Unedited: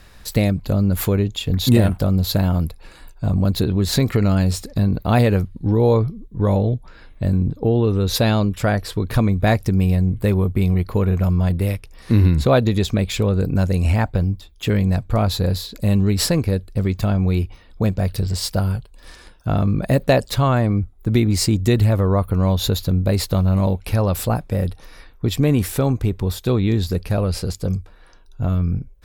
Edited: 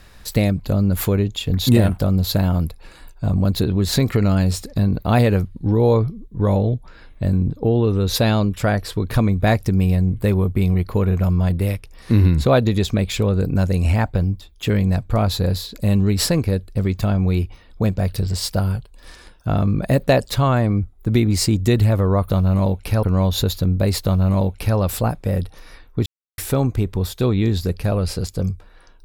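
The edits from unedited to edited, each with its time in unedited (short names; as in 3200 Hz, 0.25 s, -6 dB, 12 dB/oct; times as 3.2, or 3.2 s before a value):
23.3–24.04 copy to 22.29
25.32–25.64 mute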